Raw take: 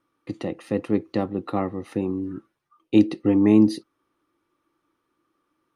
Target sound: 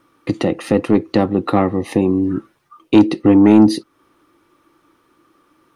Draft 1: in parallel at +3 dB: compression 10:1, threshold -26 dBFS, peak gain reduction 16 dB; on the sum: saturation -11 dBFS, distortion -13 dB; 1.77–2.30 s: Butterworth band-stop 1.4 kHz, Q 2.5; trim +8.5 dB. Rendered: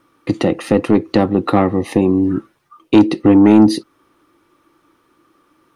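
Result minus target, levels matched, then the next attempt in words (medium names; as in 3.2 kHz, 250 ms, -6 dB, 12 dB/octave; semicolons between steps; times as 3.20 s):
compression: peak gain reduction -6.5 dB
in parallel at +3 dB: compression 10:1, threshold -33 dBFS, peak gain reduction 22.5 dB; on the sum: saturation -11 dBFS, distortion -14 dB; 1.77–2.30 s: Butterworth band-stop 1.4 kHz, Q 2.5; trim +8.5 dB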